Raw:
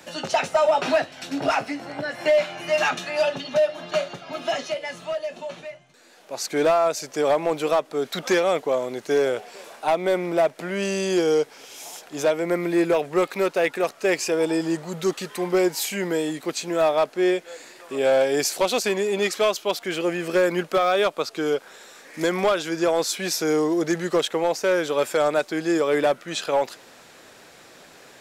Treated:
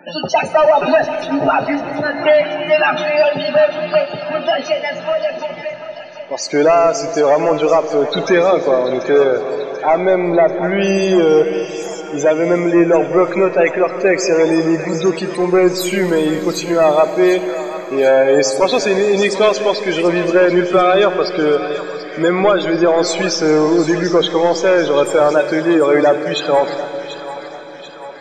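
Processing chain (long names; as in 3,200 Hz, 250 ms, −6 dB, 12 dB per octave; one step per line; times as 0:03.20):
leveller curve on the samples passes 1
spectral peaks only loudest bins 32
echo with a time of its own for lows and highs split 660 Hz, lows 203 ms, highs 738 ms, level −12 dB
on a send at −11 dB: convolution reverb RT60 5.6 s, pre-delay 35 ms
on the sum: level +6.5 dB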